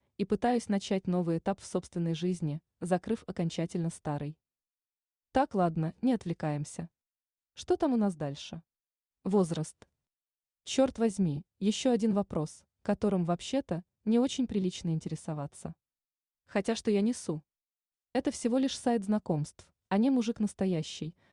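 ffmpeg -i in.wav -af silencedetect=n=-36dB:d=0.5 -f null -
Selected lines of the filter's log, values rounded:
silence_start: 4.31
silence_end: 5.35 | silence_duration: 1.04
silence_start: 6.84
silence_end: 7.59 | silence_duration: 0.75
silence_start: 8.56
silence_end: 9.26 | silence_duration: 0.70
silence_start: 9.82
silence_end: 10.68 | silence_duration: 0.85
silence_start: 15.70
silence_end: 16.55 | silence_duration: 0.86
silence_start: 17.38
silence_end: 18.15 | silence_duration: 0.77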